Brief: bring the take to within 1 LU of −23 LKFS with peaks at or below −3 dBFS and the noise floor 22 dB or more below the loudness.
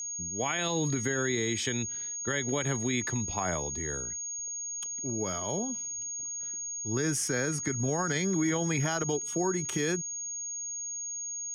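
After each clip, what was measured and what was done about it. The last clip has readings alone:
crackle rate 44 per second; interfering tone 6,600 Hz; level of the tone −34 dBFS; integrated loudness −30.5 LKFS; sample peak −17.0 dBFS; target loudness −23.0 LKFS
→ click removal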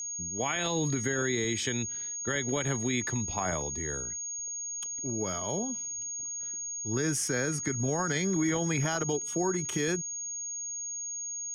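crackle rate 0.17 per second; interfering tone 6,600 Hz; level of the tone −34 dBFS
→ notch filter 6,600 Hz, Q 30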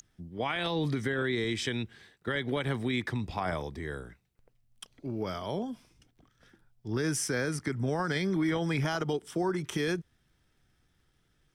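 interfering tone none found; integrated loudness −32.0 LKFS; sample peak −18.0 dBFS; target loudness −23.0 LKFS
→ level +9 dB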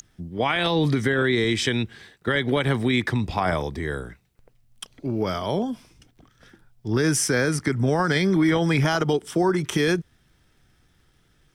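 integrated loudness −23.0 LKFS; sample peak −9.0 dBFS; background noise floor −63 dBFS

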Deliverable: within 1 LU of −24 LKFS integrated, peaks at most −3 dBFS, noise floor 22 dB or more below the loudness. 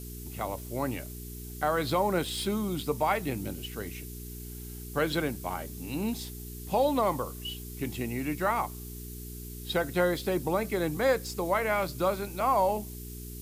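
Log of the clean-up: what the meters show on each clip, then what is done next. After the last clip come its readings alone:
mains hum 60 Hz; hum harmonics up to 420 Hz; level of the hum −40 dBFS; background noise floor −42 dBFS; target noise floor −53 dBFS; integrated loudness −30.5 LKFS; sample peak −14.5 dBFS; target loudness −24.0 LKFS
→ hum removal 60 Hz, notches 7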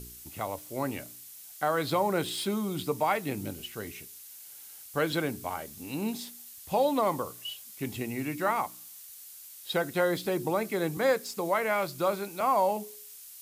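mains hum none found; background noise floor −48 dBFS; target noise floor −53 dBFS
→ broadband denoise 6 dB, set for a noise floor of −48 dBFS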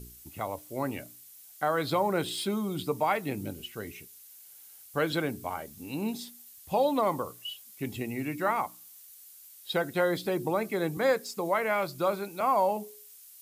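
background noise floor −52 dBFS; target noise floor −53 dBFS
→ broadband denoise 6 dB, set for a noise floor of −52 dBFS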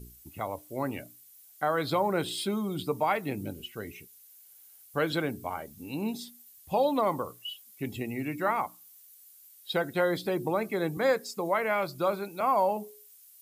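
background noise floor −55 dBFS; integrated loudness −30.5 LKFS; sample peak −15.0 dBFS; target loudness −24.0 LKFS
→ level +6.5 dB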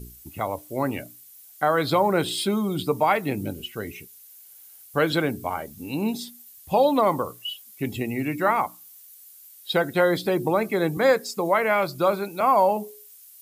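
integrated loudness −24.0 LKFS; sample peak −8.5 dBFS; background noise floor −49 dBFS

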